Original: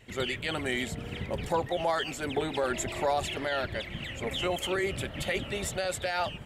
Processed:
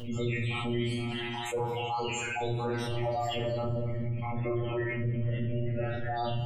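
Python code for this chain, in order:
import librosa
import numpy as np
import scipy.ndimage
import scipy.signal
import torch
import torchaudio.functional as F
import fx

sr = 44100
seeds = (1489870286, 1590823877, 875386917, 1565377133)

y = fx.spec_dropout(x, sr, seeds[0], share_pct=67)
y = fx.lowpass(y, sr, hz=fx.line((3.57, 1500.0), (6.07, 2900.0)), slope=24, at=(3.57, 6.07), fade=0.02)
y = fx.spec_gate(y, sr, threshold_db=-20, keep='strong')
y = scipy.signal.sosfilt(scipy.signal.butter(2, 71.0, 'highpass', fs=sr, output='sos'), y)
y = fx.low_shelf(y, sr, hz=310.0, db=6.5)
y = fx.echo_feedback(y, sr, ms=226, feedback_pct=34, wet_db=-17.0)
y = fx.robotise(y, sr, hz=119.0)
y = fx.low_shelf(y, sr, hz=130.0, db=5.0)
y = fx.comb_fb(y, sr, f0_hz=220.0, decay_s=1.4, harmonics='all', damping=0.0, mix_pct=50)
y = fx.room_shoebox(y, sr, seeds[1], volume_m3=170.0, walls='mixed', distance_m=2.3)
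y = fx.env_flatten(y, sr, amount_pct=70)
y = y * 10.0 ** (-5.5 / 20.0)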